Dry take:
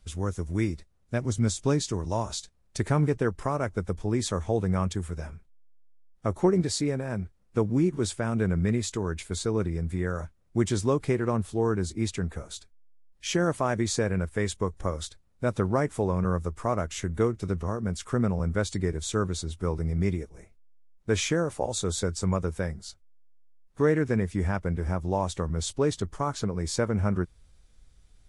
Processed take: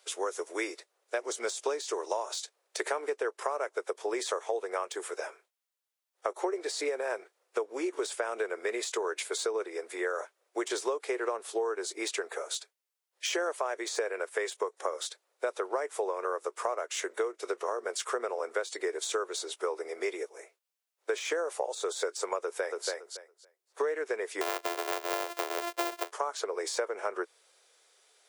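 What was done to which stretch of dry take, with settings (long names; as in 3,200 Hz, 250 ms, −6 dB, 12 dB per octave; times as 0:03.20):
0:22.39–0:22.88: delay throw 280 ms, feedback 15%, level −6.5 dB
0:24.41–0:26.11: samples sorted by size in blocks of 128 samples
whole clip: de-essing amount 80%; Butterworth high-pass 400 Hz 48 dB per octave; downward compressor 10 to 1, threshold −35 dBFS; level +7 dB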